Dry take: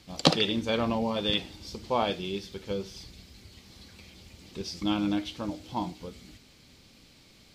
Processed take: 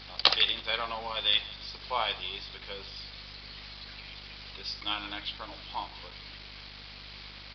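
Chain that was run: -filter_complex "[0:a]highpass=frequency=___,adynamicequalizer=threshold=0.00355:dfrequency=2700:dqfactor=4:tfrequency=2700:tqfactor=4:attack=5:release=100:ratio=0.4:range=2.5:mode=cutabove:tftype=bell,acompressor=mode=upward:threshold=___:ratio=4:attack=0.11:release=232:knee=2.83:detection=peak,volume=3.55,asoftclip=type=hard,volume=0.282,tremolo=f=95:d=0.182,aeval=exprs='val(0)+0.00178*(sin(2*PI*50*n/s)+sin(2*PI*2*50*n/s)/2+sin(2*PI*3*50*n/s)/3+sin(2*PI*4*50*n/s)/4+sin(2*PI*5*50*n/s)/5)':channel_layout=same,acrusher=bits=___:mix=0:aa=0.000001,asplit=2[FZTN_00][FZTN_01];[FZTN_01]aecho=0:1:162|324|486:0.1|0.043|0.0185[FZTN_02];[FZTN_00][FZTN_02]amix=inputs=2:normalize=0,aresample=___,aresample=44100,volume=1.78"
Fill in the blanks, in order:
1200, 0.0112, 7, 11025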